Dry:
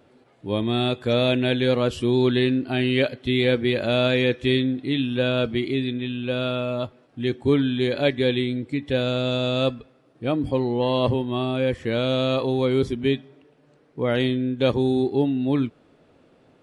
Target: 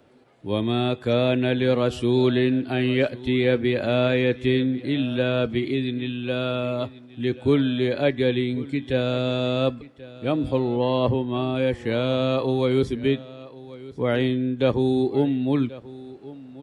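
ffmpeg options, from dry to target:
ffmpeg -i in.wav -filter_complex "[0:a]asettb=1/sr,asplit=3[link_01][link_02][link_03];[link_01]atrim=end=10.594[link_04];[link_02]atrim=start=10.59:end=11.56,asetpts=PTS-STARTPTS,afade=type=in:duration=0.004:curve=qsin,afade=type=out:start_time=0.966:duration=0.004:curve=qsin,highshelf=frequency=5300:gain=-11[link_05];[link_03]atrim=start=11.556[link_06];[link_04][link_05]acrossfade=duration=0.004:curve1=hsin:curve2=qsin[link_07];[link_07][link_06]acrossfade=duration=0.004:curve1=qsin:curve2=hsin,acrossover=split=280|750|2500[link_08][link_09][link_10][link_11];[link_11]alimiter=level_in=4dB:limit=-24dB:level=0:latency=1:release=198,volume=-4dB[link_12];[link_08][link_09][link_10][link_12]amix=inputs=4:normalize=0,aecho=1:1:1084:0.119" out.wav

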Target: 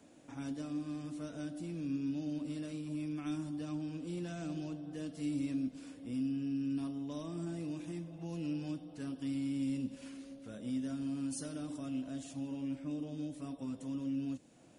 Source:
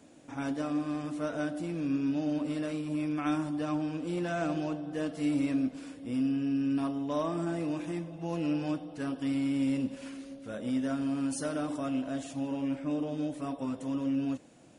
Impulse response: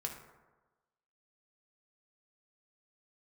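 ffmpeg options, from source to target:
-filter_complex "[0:a]acrossover=split=320|3000[link_01][link_02][link_03];[link_02]acompressor=threshold=-52dB:ratio=2.5[link_04];[link_01][link_04][link_03]amix=inputs=3:normalize=0,volume=-4dB"

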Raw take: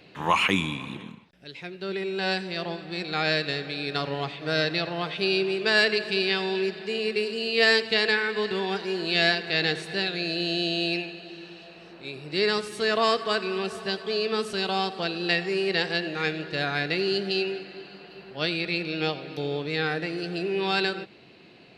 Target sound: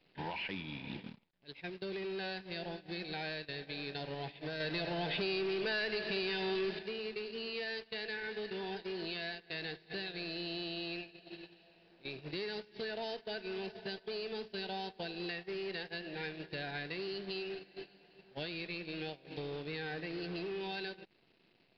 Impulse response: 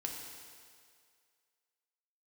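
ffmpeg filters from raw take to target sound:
-filter_complex "[0:a]asuperstop=centerf=1200:order=12:qfactor=2.5,acompressor=threshold=-35dB:ratio=8,acrusher=bits=9:dc=4:mix=0:aa=0.000001,asettb=1/sr,asplit=3[link_01][link_02][link_03];[link_01]atrim=end=4.604[link_04];[link_02]atrim=start=4.6:end=6.79,asetpts=PTS-STARTPTS,afade=type=in:duration=0.004:curve=qsin,afade=type=out:start_time=2.186:duration=0.004:curve=qsin,acontrast=67[link_05];[link_03]atrim=start=6.786[link_06];[link_04][link_05]acrossfade=duration=0.004:curve1=hsin:curve2=qsin[link_07];[link_07][link_06]acrossfade=duration=0.004:curve1=qsin:curve2=hsin,agate=range=-16dB:threshold=-40dB:ratio=16:detection=peak,asoftclip=type=tanh:threshold=-30.5dB,acrusher=bits=3:mode=log:mix=0:aa=0.000001,aresample=11025,aresample=44100,volume=-1.5dB"

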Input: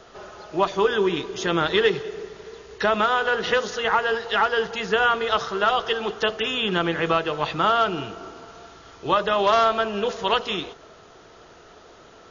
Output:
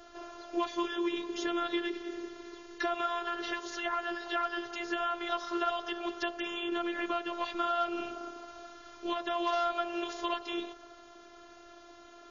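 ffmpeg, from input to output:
ffmpeg -i in.wav -filter_complex "[0:a]acrossover=split=110|1600[link_01][link_02][link_03];[link_01]acompressor=threshold=-53dB:ratio=4[link_04];[link_02]acompressor=threshold=-26dB:ratio=4[link_05];[link_03]acompressor=threshold=-34dB:ratio=4[link_06];[link_04][link_05][link_06]amix=inputs=3:normalize=0,afftfilt=real='hypot(re,im)*cos(PI*b)':imag='0':win_size=512:overlap=0.75,volume=-2dB" out.wav

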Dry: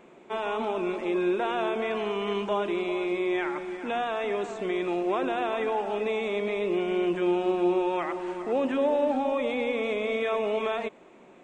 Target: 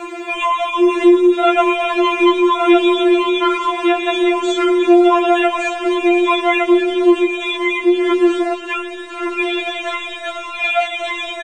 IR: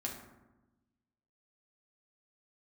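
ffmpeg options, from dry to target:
-filter_complex "[0:a]asettb=1/sr,asplit=3[link_01][link_02][link_03];[link_01]atrim=end=7.264[link_04];[link_02]atrim=start=7.26:end=8.04,asetpts=PTS-STARTPTS,afade=type=in:duration=0.004:curve=qsin,afade=type=out:start_time=0.776:duration=0.004:curve=qsin,asplit=3[link_05][link_06][link_07];[link_05]bandpass=frequency=530:width_type=q:width=8,volume=0dB[link_08];[link_06]bandpass=frequency=1840:width_type=q:width=8,volume=-6dB[link_09];[link_07]bandpass=frequency=2480:width_type=q:width=8,volume=-9dB[link_10];[link_08][link_09][link_10]amix=inputs=3:normalize=0[link_11];[link_03]atrim=start=8.036[link_12];[link_04][link_11]acrossfade=duration=0.004:curve1=hsin:curve2=qsin[link_13];[link_13][link_12]acrossfade=duration=0.004:curve1=qsin:curve2=hsin,aeval=exprs='0.188*(cos(1*acos(clip(val(0)/0.188,-1,1)))-cos(1*PI/2))+0.00133*(cos(4*acos(clip(val(0)/0.188,-1,1)))-cos(4*PI/2))':channel_layout=same,bandreject=frequency=660:width=12,asplit=2[link_14][link_15];[link_15]aecho=0:1:1163:0.708[link_16];[link_14][link_16]amix=inputs=2:normalize=0,asplit=3[link_17][link_18][link_19];[link_17]afade=type=out:start_time=3.65:duration=0.02[link_20];[link_18]tremolo=f=98:d=0.919,afade=type=in:start_time=3.65:duration=0.02,afade=type=out:start_time=4.13:duration=0.02[link_21];[link_19]afade=type=in:start_time=4.13:duration=0.02[link_22];[link_20][link_21][link_22]amix=inputs=3:normalize=0,acompressor=threshold=-37dB:ratio=6,lowshelf=frequency=420:gain=-11.5,alimiter=level_in=30dB:limit=-1dB:release=50:level=0:latency=1,afftfilt=real='re*4*eq(mod(b,16),0)':imag='im*4*eq(mod(b,16),0)':win_size=2048:overlap=0.75"

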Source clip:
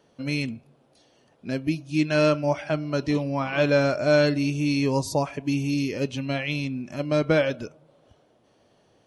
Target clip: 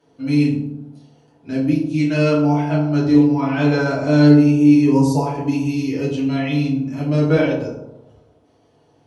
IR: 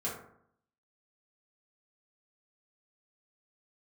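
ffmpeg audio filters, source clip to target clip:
-filter_complex "[0:a]asettb=1/sr,asplit=3[link_01][link_02][link_03];[link_01]atrim=end=4.344[link_04];[link_02]atrim=start=4.34:end=5.05,asetpts=PTS-STARTPTS,afade=type=in:duration=0.004:curve=qsin,afade=type=out:start_time=0.706:duration=0.004:curve=qsin,equalizer=frequency=4100:width=3.1:gain=-7[link_05];[link_03]atrim=start=5.046[link_06];[link_04][link_05]acrossfade=duration=0.004:curve1=hsin:curve2=qsin[link_07];[link_07][link_06]acrossfade=duration=0.004:curve1=qsin:curve2=hsin[link_08];[1:a]atrim=start_sample=2205,asetrate=27783,aresample=44100[link_09];[link_08][link_09]afir=irnorm=-1:irlink=0,volume=-3.5dB"

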